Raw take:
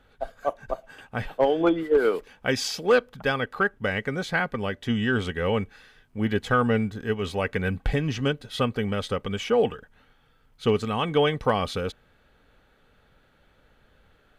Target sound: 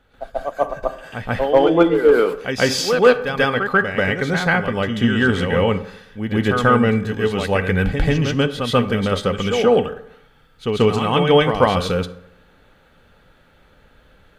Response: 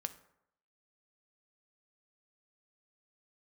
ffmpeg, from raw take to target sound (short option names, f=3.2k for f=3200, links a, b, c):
-filter_complex "[0:a]asplit=2[a][b];[1:a]atrim=start_sample=2205,adelay=138[c];[b][c]afir=irnorm=-1:irlink=0,volume=8.5dB[d];[a][d]amix=inputs=2:normalize=0"